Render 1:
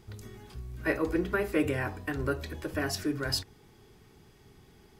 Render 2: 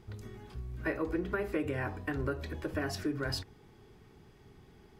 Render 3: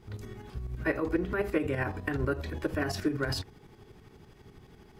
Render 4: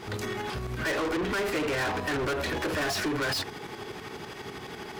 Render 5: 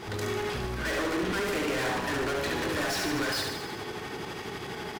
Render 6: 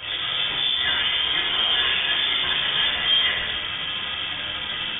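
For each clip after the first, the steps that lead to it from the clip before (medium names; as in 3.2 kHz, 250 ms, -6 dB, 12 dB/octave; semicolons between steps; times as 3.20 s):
treble shelf 4 kHz -9.5 dB; compression 6:1, threshold -29 dBFS, peak gain reduction 7.5 dB
tremolo saw up 12 Hz, depth 65%; trim +7 dB
overdrive pedal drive 35 dB, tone 6.5 kHz, clips at -15.5 dBFS; trim -6.5 dB
saturation -31 dBFS, distortion -15 dB; on a send: reverse bouncing-ball echo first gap 70 ms, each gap 1.1×, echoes 5; on the sum: trim +1.5 dB
in parallel at -8.5 dB: companded quantiser 2-bit; on the sum: simulated room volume 270 m³, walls furnished, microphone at 2.7 m; frequency inversion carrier 3.5 kHz; trim -2.5 dB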